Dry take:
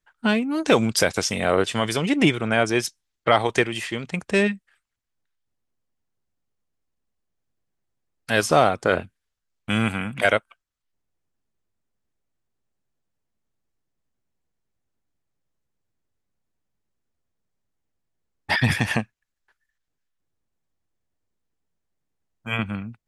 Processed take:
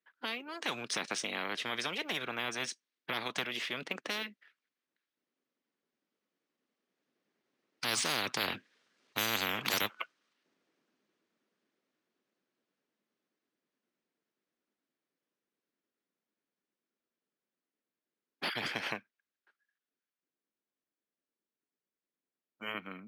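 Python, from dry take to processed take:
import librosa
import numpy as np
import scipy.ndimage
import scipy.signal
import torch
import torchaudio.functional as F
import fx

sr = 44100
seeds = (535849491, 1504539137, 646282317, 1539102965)

y = fx.doppler_pass(x, sr, speed_mps=19, closest_m=8.5, pass_at_s=9.35)
y = scipy.signal.sosfilt(scipy.signal.butter(4, 230.0, 'highpass', fs=sr, output='sos'), y)
y = fx.peak_eq(y, sr, hz=800.0, db=-6.5, octaves=0.84)
y = np.repeat(scipy.signal.resample_poly(y, 1, 3), 3)[:len(y)]
y = fx.air_absorb(y, sr, metres=100.0)
y = fx.spectral_comp(y, sr, ratio=10.0)
y = y * librosa.db_to_amplitude(-4.0)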